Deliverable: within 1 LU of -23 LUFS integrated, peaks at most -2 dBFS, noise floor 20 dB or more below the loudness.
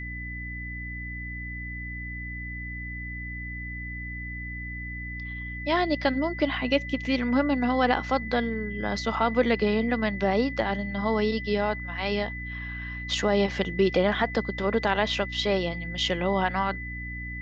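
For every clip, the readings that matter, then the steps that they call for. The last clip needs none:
hum 60 Hz; harmonics up to 300 Hz; hum level -35 dBFS; steady tone 2000 Hz; tone level -36 dBFS; loudness -27.5 LUFS; peak -8.5 dBFS; loudness target -23.0 LUFS
-> de-hum 60 Hz, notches 5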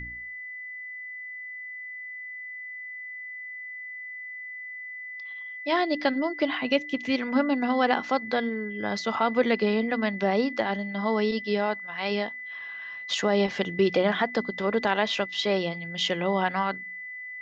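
hum none; steady tone 2000 Hz; tone level -36 dBFS
-> notch 2000 Hz, Q 30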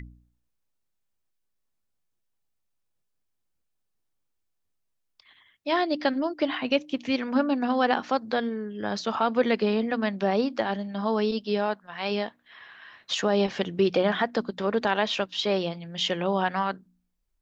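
steady tone none; loudness -26.5 LUFS; peak -8.5 dBFS; loudness target -23.0 LUFS
-> gain +3.5 dB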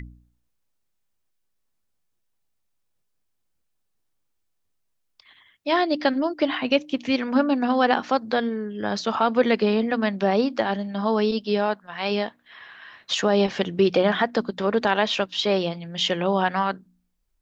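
loudness -23.0 LUFS; peak -5.0 dBFS; noise floor -73 dBFS

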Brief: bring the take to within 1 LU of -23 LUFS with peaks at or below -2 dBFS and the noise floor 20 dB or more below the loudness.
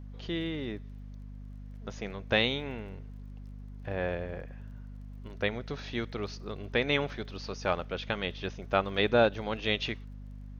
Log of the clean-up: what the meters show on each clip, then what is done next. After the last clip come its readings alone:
ticks 24/s; hum 50 Hz; harmonics up to 250 Hz; hum level -41 dBFS; loudness -32.0 LUFS; peak -10.0 dBFS; loudness target -23.0 LUFS
-> de-click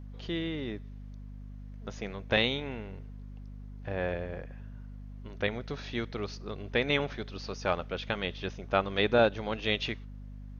ticks 0/s; hum 50 Hz; harmonics up to 250 Hz; hum level -41 dBFS
-> de-hum 50 Hz, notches 5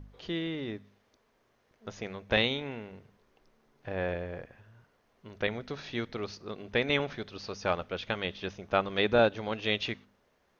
hum none; loudness -32.0 LUFS; peak -10.0 dBFS; loudness target -23.0 LUFS
-> gain +9 dB; limiter -2 dBFS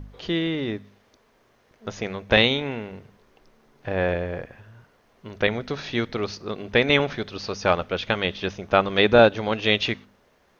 loudness -23.0 LUFS; peak -2.0 dBFS; noise floor -62 dBFS

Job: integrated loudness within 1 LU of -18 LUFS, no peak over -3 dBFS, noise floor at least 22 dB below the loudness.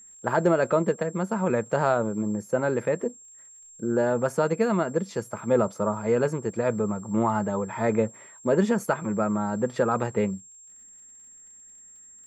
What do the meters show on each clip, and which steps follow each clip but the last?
ticks 51/s; steady tone 7500 Hz; tone level -47 dBFS; loudness -26.0 LUFS; peak -9.5 dBFS; loudness target -18.0 LUFS
-> de-click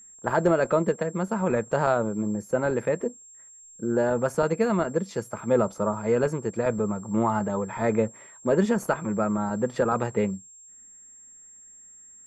ticks 0.082/s; steady tone 7500 Hz; tone level -47 dBFS
-> notch 7500 Hz, Q 30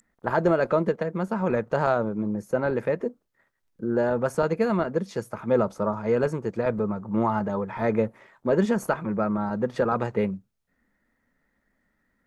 steady tone none; loudness -26.0 LUFS; peak -9.5 dBFS; loudness target -18.0 LUFS
-> gain +8 dB; limiter -3 dBFS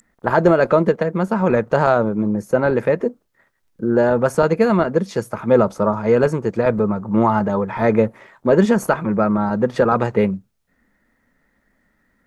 loudness -18.0 LUFS; peak -3.0 dBFS; noise floor -66 dBFS

